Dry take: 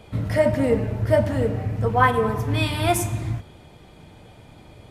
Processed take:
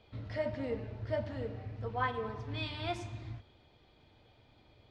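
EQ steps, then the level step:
transistor ladder low-pass 5,200 Hz, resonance 40%
parametric band 170 Hz −12 dB 0.29 octaves
−8.0 dB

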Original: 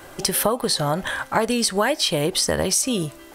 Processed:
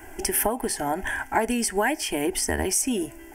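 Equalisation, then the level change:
low-shelf EQ 93 Hz +8.5 dB
phaser with its sweep stopped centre 800 Hz, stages 8
0.0 dB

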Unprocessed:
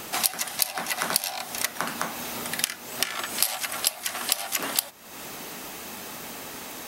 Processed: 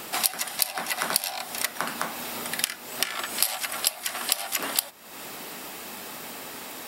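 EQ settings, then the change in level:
low-shelf EQ 120 Hz −8.5 dB
notch filter 6,300 Hz, Q 9.3
0.0 dB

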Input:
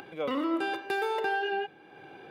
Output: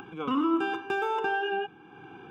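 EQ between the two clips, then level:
high-shelf EQ 2,200 Hz −11 dB
mains-hum notches 50/100/150 Hz
phaser with its sweep stopped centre 2,900 Hz, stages 8
+8.0 dB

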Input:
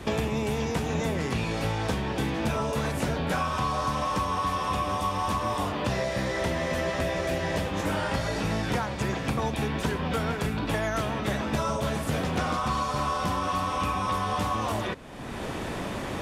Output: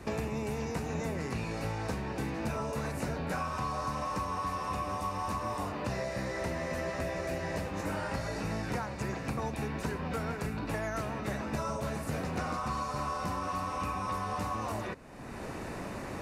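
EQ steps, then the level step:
parametric band 3,300 Hz −14 dB 0.23 octaves
−6.5 dB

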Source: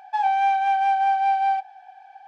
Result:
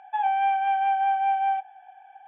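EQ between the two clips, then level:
linear-phase brick-wall low-pass 3,500 Hz
high-frequency loss of the air 83 metres
−2.5 dB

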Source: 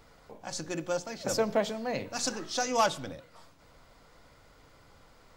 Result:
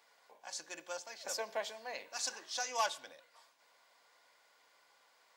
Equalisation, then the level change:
high-pass filter 830 Hz 12 dB per octave
Butterworth band-reject 1,300 Hz, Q 7.9
−5.0 dB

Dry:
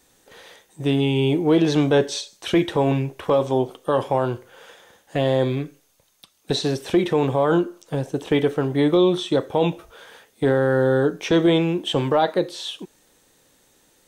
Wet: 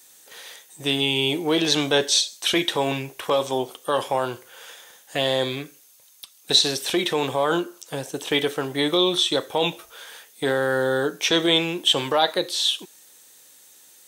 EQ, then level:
spectral tilt +3.5 dB per octave
dynamic equaliser 3,700 Hz, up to +4 dB, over −37 dBFS, Q 2.2
0.0 dB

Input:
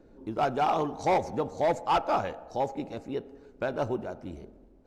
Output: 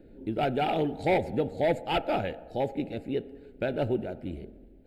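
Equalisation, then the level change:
phaser with its sweep stopped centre 2,600 Hz, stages 4
+4.5 dB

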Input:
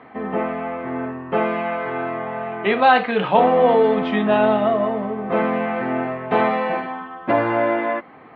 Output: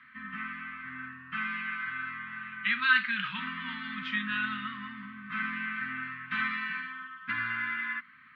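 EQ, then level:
elliptic band-stop filter 240–1,500 Hz, stop band 50 dB
low shelf with overshoot 680 Hz −11.5 dB, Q 3
−4.0 dB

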